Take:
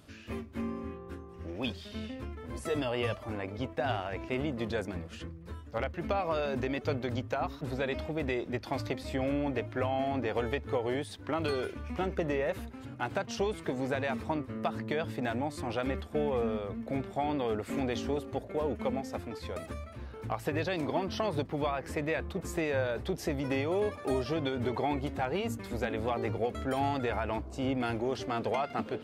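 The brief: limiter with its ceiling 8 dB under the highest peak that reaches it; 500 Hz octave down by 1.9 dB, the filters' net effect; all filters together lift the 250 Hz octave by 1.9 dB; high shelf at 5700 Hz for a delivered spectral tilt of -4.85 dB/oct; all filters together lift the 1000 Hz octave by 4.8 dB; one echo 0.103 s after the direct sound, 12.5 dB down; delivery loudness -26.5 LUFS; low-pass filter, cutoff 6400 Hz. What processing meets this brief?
LPF 6400 Hz; bell 250 Hz +3.5 dB; bell 500 Hz -6 dB; bell 1000 Hz +8.5 dB; high shelf 5700 Hz +7.5 dB; limiter -23.5 dBFS; echo 0.103 s -12.5 dB; gain +8 dB

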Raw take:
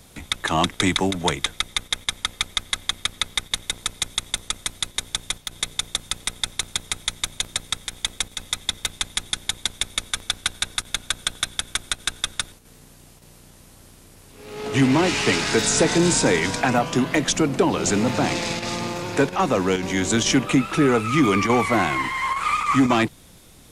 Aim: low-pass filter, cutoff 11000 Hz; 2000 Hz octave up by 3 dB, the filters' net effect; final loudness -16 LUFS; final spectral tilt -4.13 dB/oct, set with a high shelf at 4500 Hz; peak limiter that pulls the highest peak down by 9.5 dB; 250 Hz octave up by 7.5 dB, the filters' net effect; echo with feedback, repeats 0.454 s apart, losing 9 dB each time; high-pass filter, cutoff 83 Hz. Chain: HPF 83 Hz; LPF 11000 Hz; bell 250 Hz +9 dB; bell 2000 Hz +4.5 dB; high shelf 4500 Hz -5.5 dB; limiter -10 dBFS; feedback echo 0.454 s, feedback 35%, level -9 dB; gain +6 dB

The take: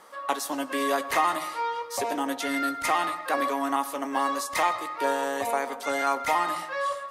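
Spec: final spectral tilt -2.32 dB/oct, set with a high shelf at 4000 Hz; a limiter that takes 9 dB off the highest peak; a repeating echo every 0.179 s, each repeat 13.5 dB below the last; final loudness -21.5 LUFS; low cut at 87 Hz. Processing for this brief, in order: HPF 87 Hz; high shelf 4000 Hz +4.5 dB; limiter -19 dBFS; feedback echo 0.179 s, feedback 21%, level -13.5 dB; gain +7.5 dB

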